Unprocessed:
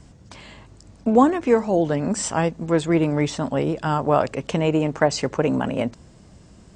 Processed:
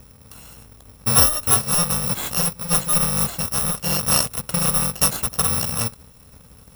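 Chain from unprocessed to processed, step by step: FFT order left unsorted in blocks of 128 samples; in parallel at -8 dB: sample-and-hold 18×; on the sum: gain -1 dB

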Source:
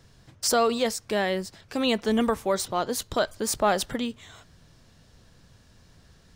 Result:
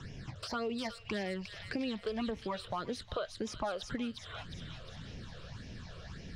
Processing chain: phaser stages 8, 1.8 Hz, lowest notch 240–1300 Hz; compressor 3:1, threshold -45 dBFS, peak gain reduction 18 dB; air absorption 120 m; thin delay 0.356 s, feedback 48%, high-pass 2700 Hz, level -3 dB; three-band squash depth 40%; gain +6.5 dB

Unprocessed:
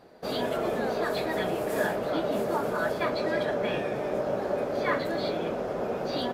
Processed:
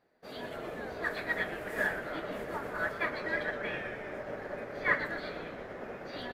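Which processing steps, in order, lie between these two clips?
bell 1900 Hz +8.5 dB 0.82 oct, from 1.04 s +15 dB; frequency-shifting echo 0.123 s, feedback 59%, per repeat -140 Hz, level -9.5 dB; upward expander 1.5:1, over -40 dBFS; gain -7.5 dB

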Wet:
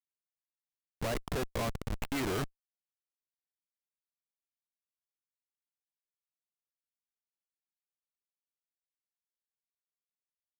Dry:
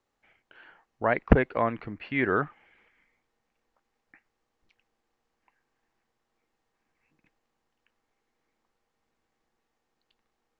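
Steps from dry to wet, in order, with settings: in parallel at +1.5 dB: compressor, threshold -34 dBFS, peak gain reduction 21.5 dB; on the sum: Schmitt trigger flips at -28.5 dBFS

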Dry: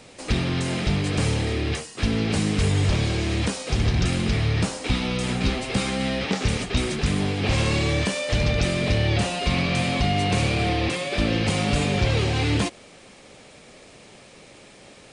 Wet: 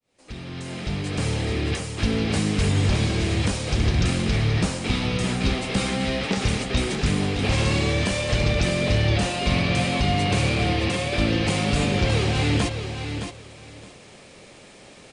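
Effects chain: opening faded in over 1.64 s; feedback echo 0.616 s, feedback 18%, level -8 dB

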